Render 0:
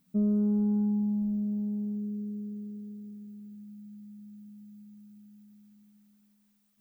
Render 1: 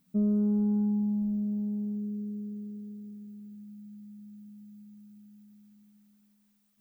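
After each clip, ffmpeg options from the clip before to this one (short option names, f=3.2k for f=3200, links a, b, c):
-af anull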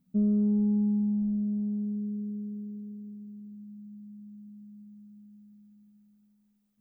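-af "tiltshelf=f=640:g=6.5,volume=-4dB"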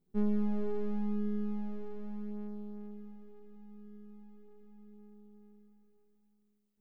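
-af "aeval=exprs='max(val(0),0)':c=same,flanger=delay=19:depth=4.5:speed=0.38"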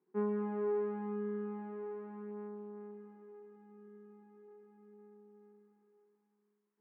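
-af "highpass=f=230:w=0.5412,highpass=f=230:w=1.3066,equalizer=f=240:t=q:w=4:g=-7,equalizer=f=370:t=q:w=4:g=7,equalizer=f=610:t=q:w=4:g=-6,equalizer=f=1k:t=q:w=4:g=10,equalizer=f=1.6k:t=q:w=4:g=4,lowpass=f=2.2k:w=0.5412,lowpass=f=2.2k:w=1.3066,volume=1.5dB"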